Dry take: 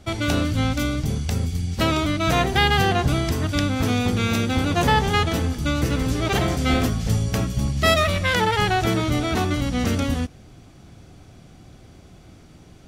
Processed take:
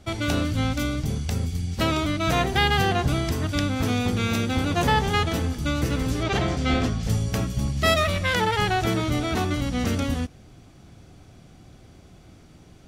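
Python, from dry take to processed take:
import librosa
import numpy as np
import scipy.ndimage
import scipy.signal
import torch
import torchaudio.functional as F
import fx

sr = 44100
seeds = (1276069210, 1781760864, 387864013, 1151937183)

y = fx.lowpass(x, sr, hz=6500.0, slope=12, at=(6.23, 7.03))
y = y * librosa.db_to_amplitude(-2.5)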